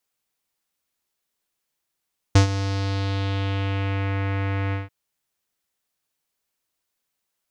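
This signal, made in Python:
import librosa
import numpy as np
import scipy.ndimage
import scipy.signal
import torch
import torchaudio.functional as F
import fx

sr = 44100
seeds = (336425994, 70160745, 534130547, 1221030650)

y = fx.sub_voice(sr, note=43, wave='square', cutoff_hz=2200.0, q=2.2, env_oct=1.5, env_s=1.81, attack_ms=6.9, decay_s=0.11, sustain_db=-13.5, release_s=0.16, note_s=2.38, slope=12)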